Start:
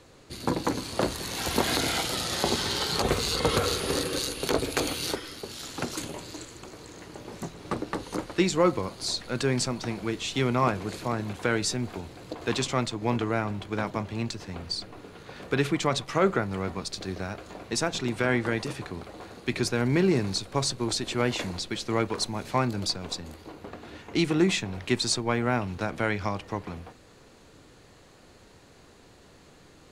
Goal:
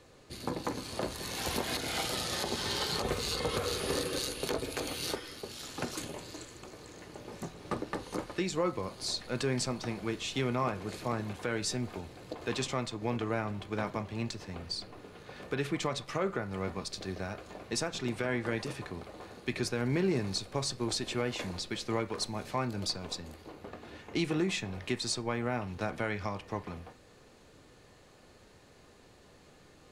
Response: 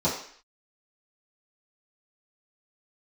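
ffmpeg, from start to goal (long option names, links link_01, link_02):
-filter_complex "[0:a]alimiter=limit=-16dB:level=0:latency=1:release=259,asplit=2[link_01][link_02];[link_02]highpass=780,lowpass=5800[link_03];[1:a]atrim=start_sample=2205,asetrate=83790,aresample=44100[link_04];[link_03][link_04]afir=irnorm=-1:irlink=0,volume=-16.5dB[link_05];[link_01][link_05]amix=inputs=2:normalize=0,volume=-4.5dB"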